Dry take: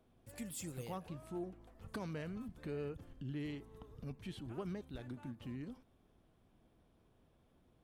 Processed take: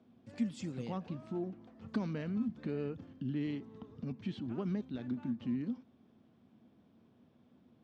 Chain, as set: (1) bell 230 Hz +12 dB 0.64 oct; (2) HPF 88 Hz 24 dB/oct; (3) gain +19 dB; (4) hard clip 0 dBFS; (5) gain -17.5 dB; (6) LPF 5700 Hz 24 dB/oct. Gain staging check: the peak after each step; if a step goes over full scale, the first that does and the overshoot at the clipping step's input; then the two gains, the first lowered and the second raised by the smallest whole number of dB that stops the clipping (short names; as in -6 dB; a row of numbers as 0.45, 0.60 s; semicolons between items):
-25.0, -24.5, -5.5, -5.5, -23.0, -23.0 dBFS; no overload